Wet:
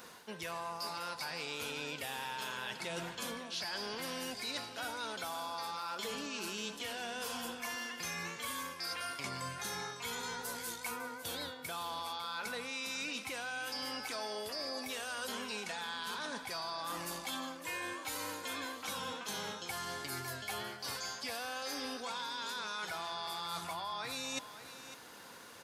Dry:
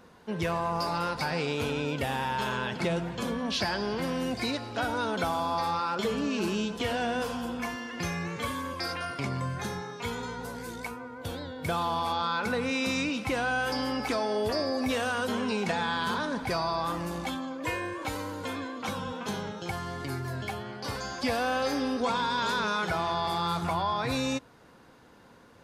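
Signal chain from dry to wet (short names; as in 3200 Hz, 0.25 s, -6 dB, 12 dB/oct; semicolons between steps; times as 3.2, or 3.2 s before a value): tilt +3.5 dB/oct; reverse; compressor 8:1, threshold -41 dBFS, peak gain reduction 19.5 dB; reverse; echo 0.553 s -13 dB; gain +3 dB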